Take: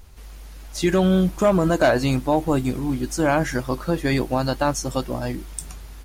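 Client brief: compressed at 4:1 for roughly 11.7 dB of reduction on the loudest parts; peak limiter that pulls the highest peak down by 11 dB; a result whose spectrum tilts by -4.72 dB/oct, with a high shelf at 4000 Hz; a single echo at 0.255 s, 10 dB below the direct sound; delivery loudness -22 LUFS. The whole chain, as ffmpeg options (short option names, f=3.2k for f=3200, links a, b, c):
-af "highshelf=f=4k:g=7,acompressor=threshold=-27dB:ratio=4,alimiter=limit=-20.5dB:level=0:latency=1,aecho=1:1:255:0.316,volume=9.5dB"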